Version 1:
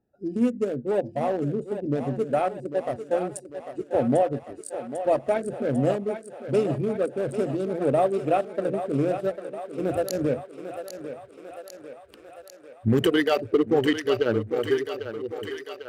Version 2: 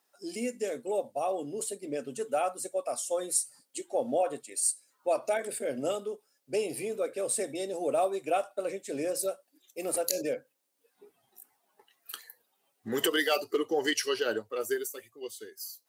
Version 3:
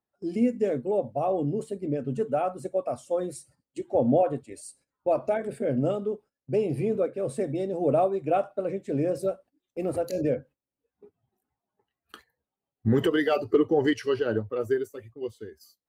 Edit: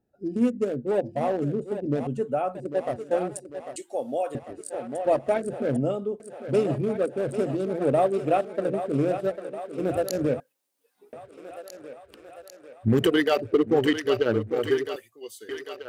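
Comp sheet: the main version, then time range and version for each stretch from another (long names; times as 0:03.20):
1
0:02.07–0:02.55: punch in from 3
0:03.76–0:04.35: punch in from 2
0:05.77–0:06.20: punch in from 3
0:10.40–0:11.13: punch in from 2
0:14.96–0:15.49: punch in from 2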